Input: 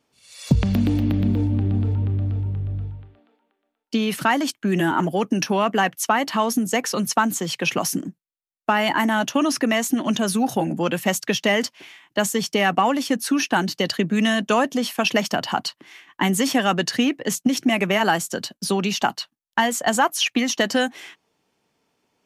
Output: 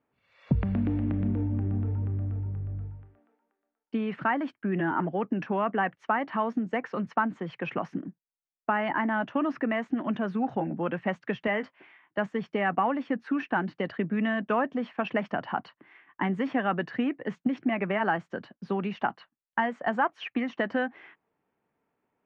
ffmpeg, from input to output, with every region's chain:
-filter_complex "[0:a]asettb=1/sr,asplit=3[s0][s1][s2];[s0]atrim=end=11.474[s3];[s1]atrim=start=11.47:end=12.18,asetpts=PTS-STARTPTS,afade=t=in:d=0.004:c=qsin,afade=t=out:st=0.706:d=0.004:c=qsin,highpass=f=200:p=1,asplit=2[s4][s5];[s5]adelay=19,volume=0.251[s6];[s4][s6]amix=inputs=2:normalize=0,atrim=end_sample=31311[s7];[s2]atrim=start=12.176[s8];[s3][s7]acrossfade=d=0.004:c1=hsin:c2=qsin[s9];[s9][s8]acrossfade=d=0.004:c1=qsin:c2=hsin,lowpass=f=1900:w=0.5412,lowpass=f=1900:w=1.3066,aemphasis=mode=production:type=75kf,volume=0.422"

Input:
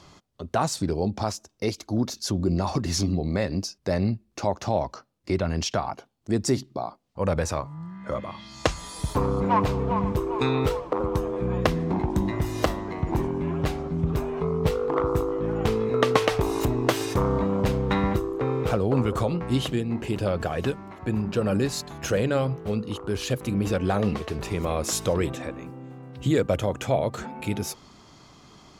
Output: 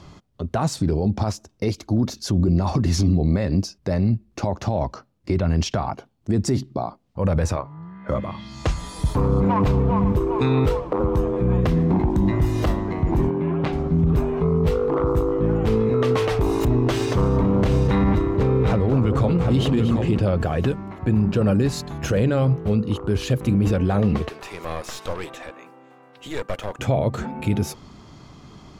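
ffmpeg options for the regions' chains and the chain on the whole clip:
-filter_complex "[0:a]asettb=1/sr,asplit=3[s0][s1][s2];[s0]atrim=end=7.564[s3];[s1]atrim=start=7.56:end=8.09,asetpts=PTS-STARTPTS,afade=t=in:d=0.004:c=qsin,afade=t=out:st=0.526:d=0.004:c=qsin,lowpass=5100,bass=f=250:g=-11,treble=f=4000:g=-6,tremolo=f=260:d=0.261[s4];[s2]atrim=start=8.086[s5];[s3][s4]acrossfade=d=0.004:c1=hsin:c2=qsin[s6];[s6][s5]acrossfade=d=0.004:c1=qsin:c2=hsin,asettb=1/sr,asplit=3[s7][s8][s9];[s7]atrim=end=13.304[s10];[s8]atrim=start=13.3:end=13.73,asetpts=PTS-STARTPTS,afade=t=in:d=0.004:c=qsin,afade=t=out:st=0.426:d=0.004:c=qsin,bandreject=f=240:w=7.6,aeval=exprs='(mod(5.31*val(0)+1,2)-1)/5.31':c=same,highpass=180,lowpass=3600[s11];[s9]atrim=start=13.726[s12];[s10][s11]acrossfade=d=0.004:c1=hsin:c2=qsin[s13];[s13][s12]acrossfade=d=0.004:c1=qsin:c2=hsin,asettb=1/sr,asplit=3[s14][s15][s16];[s14]atrim=end=16.674[s17];[s15]atrim=start=16.67:end=20.23,asetpts=PTS-STARTPTS,afade=t=in:d=0.004:c=qsin,afade=t=out:st=3.556:d=0.004:c=qsin,highshelf=f=4300:g=4.5,adynamicsmooth=sensitivity=6:basefreq=5600,aecho=1:1:232|745:0.266|0.398,atrim=end_sample=156996[s18];[s16]atrim=start=20.226[s19];[s17][s18]acrossfade=d=0.004:c1=hsin:c2=qsin[s20];[s20][s19]acrossfade=d=0.004:c1=qsin:c2=hsin,asettb=1/sr,asplit=3[s21][s22][s23];[s21]atrim=end=24.294[s24];[s22]atrim=start=24.29:end=26.79,asetpts=PTS-STARTPTS,afade=t=in:d=0.004:c=qsin,afade=t=out:st=2.496:d=0.004:c=qsin,acrossover=split=5000[s25][s26];[s26]acompressor=threshold=0.00891:ratio=4:attack=1:release=60[s27];[s25][s27]amix=inputs=2:normalize=0,highpass=730,aeval=exprs='clip(val(0),-1,0.0141)':c=same[s28];[s23]atrim=start=26.786[s29];[s24][s28]acrossfade=d=0.004:c1=hsin:c2=qsin[s30];[s30][s29]acrossfade=d=0.004:c1=qsin:c2=hsin,lowshelf=f=330:g=6.5,alimiter=limit=0.178:level=0:latency=1:release=17,bass=f=250:g=2,treble=f=4000:g=-4,volume=1.33"

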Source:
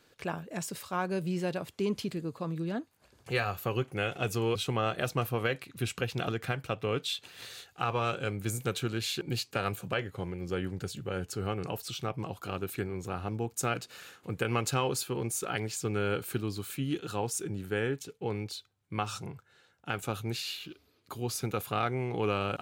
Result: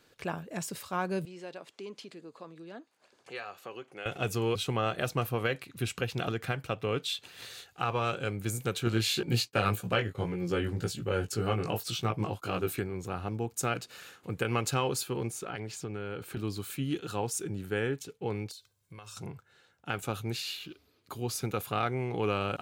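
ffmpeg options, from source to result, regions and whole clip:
-filter_complex "[0:a]asettb=1/sr,asplit=3[s0][s1][s2];[s0]atrim=end=1.254[s3];[s1]atrim=start=1.25:end=4.06,asetpts=PTS-STARTPTS,afade=t=in:d=0.004:c=qsin,afade=t=out:st=2.806:d=0.004:c=qsin,acompressor=threshold=0.00282:ratio=1.5:attack=3.2:release=140:knee=1:detection=peak,highpass=330,lowpass=7900[s4];[s2]atrim=start=4.056[s5];[s3][s4]acrossfade=d=0.004:c1=hsin:c2=qsin[s6];[s6][s5]acrossfade=d=0.004:c1=qsin:c2=hsin,asettb=1/sr,asplit=3[s7][s8][s9];[s7]atrim=end=8.854[s10];[s8]atrim=start=8.85:end=12.8,asetpts=PTS-STARTPTS,afade=t=in:d=0.004:c=qsin,afade=t=out:st=3.946:d=0.004:c=qsin,agate=range=0.0224:threshold=0.00794:ratio=3:release=100:detection=peak,acontrast=78,flanger=delay=17:depth=2.4:speed=1.9[s11];[s9]atrim=start=12.796[s12];[s10][s11]acrossfade=d=0.004:c1=hsin:c2=qsin[s13];[s13][s12]acrossfade=d=0.004:c1=qsin:c2=hsin,asettb=1/sr,asplit=3[s14][s15][s16];[s14]atrim=end=15.304[s17];[s15]atrim=start=15.3:end=16.37,asetpts=PTS-STARTPTS,afade=t=in:d=0.004:c=qsin,afade=t=out:st=1.066:d=0.004:c=qsin,aemphasis=mode=reproduction:type=cd,acompressor=threshold=0.0224:ratio=5:attack=3.2:release=140:knee=1:detection=peak[s18];[s16]atrim=start=16.366[s19];[s17][s18]acrossfade=d=0.004:c1=hsin:c2=qsin[s20];[s20][s19]acrossfade=d=0.004:c1=qsin:c2=hsin,asettb=1/sr,asplit=3[s21][s22][s23];[s21]atrim=end=18.514[s24];[s22]atrim=start=18.51:end=19.17,asetpts=PTS-STARTPTS,afade=t=in:d=0.004:c=qsin,afade=t=out:st=0.656:d=0.004:c=qsin,bass=f=250:g=0,treble=f=4000:g=10,aecho=1:1:1.9:0.49,atrim=end_sample=29106,acompressor=threshold=0.00562:ratio=6:attack=3.2:release=140:knee=1:detection=peak[s25];[s23]atrim=start=19.166[s26];[s24][s25]acrossfade=d=0.004:c1=hsin:c2=qsin[s27];[s27][s26]acrossfade=d=0.004:c1=qsin:c2=hsin"

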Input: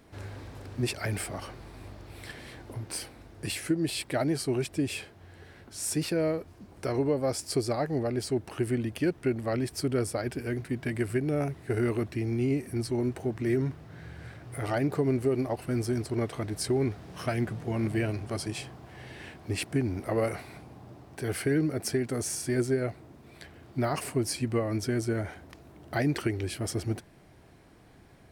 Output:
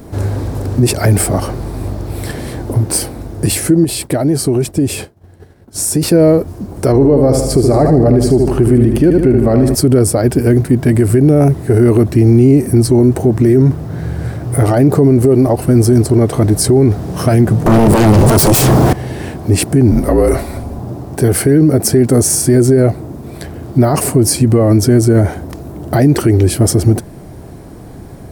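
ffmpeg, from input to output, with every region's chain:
-filter_complex "[0:a]asettb=1/sr,asplit=3[s0][s1][s2];[s0]atrim=end=3.844[s3];[s1]atrim=start=3.84:end=6.03,asetpts=PTS-STARTPTS,afade=t=in:d=0.004:c=qsin,afade=t=out:st=2.186:d=0.004:c=qsin,agate=range=0.0224:threshold=0.00891:ratio=3:release=100:detection=peak,acompressor=threshold=0.02:ratio=4:attack=3.2:release=140:knee=1:detection=peak[s4];[s2]atrim=start=6.026[s5];[s3][s4]acrossfade=d=0.004:c1=hsin:c2=qsin[s6];[s6][s5]acrossfade=d=0.004:c1=qsin:c2=hsin,asettb=1/sr,asplit=3[s7][s8][s9];[s7]atrim=end=6.924[s10];[s8]atrim=start=6.92:end=9.75,asetpts=PTS-STARTPTS,afade=t=in:d=0.004:c=qsin,afade=t=out:st=2.826:d=0.004:c=qsin,highshelf=f=3600:g=-7.5,aeval=exprs='val(0)+0.00631*(sin(2*PI*50*n/s)+sin(2*PI*2*50*n/s)/2+sin(2*PI*3*50*n/s)/3+sin(2*PI*4*50*n/s)/4+sin(2*PI*5*50*n/s)/5)':c=same,aecho=1:1:76|152|228|304|380|456:0.398|0.207|0.108|0.056|0.0291|0.0151,atrim=end_sample=124803[s11];[s9]atrim=start=9.746[s12];[s10][s11]acrossfade=d=0.004:c1=hsin:c2=qsin[s13];[s13][s12]acrossfade=d=0.004:c1=qsin:c2=hsin,asettb=1/sr,asplit=3[s14][s15][s16];[s14]atrim=end=17.664[s17];[s15]atrim=start=17.66:end=18.93,asetpts=PTS-STARTPTS,afade=t=in:d=0.004:c=qsin,afade=t=out:st=1.266:d=0.004:c=qsin,highpass=f=110:p=1,acompressor=threshold=0.0112:ratio=16:attack=3.2:release=140:knee=1:detection=peak,aeval=exprs='0.0422*sin(PI/2*7.08*val(0)/0.0422)':c=same[s18];[s16]atrim=start=18.926[s19];[s17][s18]acrossfade=d=0.004:c1=hsin:c2=qsin[s20];[s20][s19]acrossfade=d=0.004:c1=qsin:c2=hsin,asettb=1/sr,asplit=3[s21][s22][s23];[s21]atrim=end=19.914[s24];[s22]atrim=start=19.91:end=20.79,asetpts=PTS-STARTPTS,afade=t=in:d=0.004:c=qsin,afade=t=out:st=0.876:d=0.004:c=qsin,bandreject=f=50:t=h:w=6,bandreject=f=100:t=h:w=6,bandreject=f=150:t=h:w=6,bandreject=f=200:t=h:w=6,bandreject=f=250:t=h:w=6,bandreject=f=300:t=h:w=6,bandreject=f=350:t=h:w=6,bandreject=f=400:t=h:w=6,bandreject=f=450:t=h:w=6,aecho=1:1:6.7:0.38,atrim=end_sample=38808,afreqshift=-52[s25];[s23]atrim=start=20.786[s26];[s24][s25]acrossfade=d=0.004:c1=hsin:c2=qsin[s27];[s27][s26]acrossfade=d=0.004:c1=qsin:c2=hsin,equalizer=f=2500:w=0.5:g=-14,alimiter=level_in=20:limit=0.891:release=50:level=0:latency=1,volume=0.891"

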